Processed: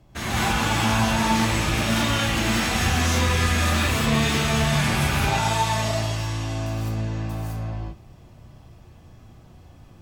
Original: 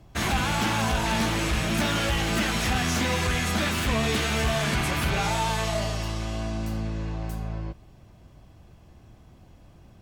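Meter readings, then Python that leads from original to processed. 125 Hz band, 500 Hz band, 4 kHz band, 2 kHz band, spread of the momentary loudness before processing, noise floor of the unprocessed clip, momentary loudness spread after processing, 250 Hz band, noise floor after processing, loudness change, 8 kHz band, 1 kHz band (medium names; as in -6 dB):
+5.0 dB, +1.5 dB, +3.0 dB, +3.0 dB, 8 LU, -53 dBFS, 8 LU, +3.5 dB, -49 dBFS, +3.5 dB, +4.0 dB, +4.0 dB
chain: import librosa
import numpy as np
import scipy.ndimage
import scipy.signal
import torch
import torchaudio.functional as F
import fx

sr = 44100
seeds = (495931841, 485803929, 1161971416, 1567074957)

p1 = 10.0 ** (-25.0 / 20.0) * np.tanh(x / 10.0 ** (-25.0 / 20.0))
p2 = x + F.gain(torch.from_numpy(p1), -11.0).numpy()
p3 = fx.rev_gated(p2, sr, seeds[0], gate_ms=230, shape='rising', drr_db=-6.5)
y = F.gain(torch.from_numpy(p3), -5.5).numpy()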